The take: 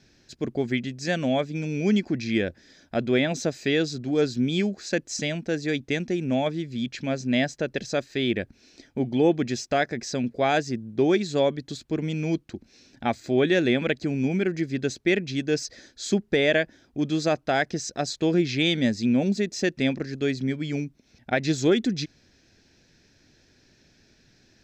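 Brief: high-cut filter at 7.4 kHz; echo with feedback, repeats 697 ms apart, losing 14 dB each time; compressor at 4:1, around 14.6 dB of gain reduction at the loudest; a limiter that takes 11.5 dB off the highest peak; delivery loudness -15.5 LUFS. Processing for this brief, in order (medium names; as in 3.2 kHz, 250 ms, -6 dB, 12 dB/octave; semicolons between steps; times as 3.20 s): low-pass 7.4 kHz; compression 4:1, threshold -35 dBFS; peak limiter -32 dBFS; feedback delay 697 ms, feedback 20%, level -14 dB; trim +26.5 dB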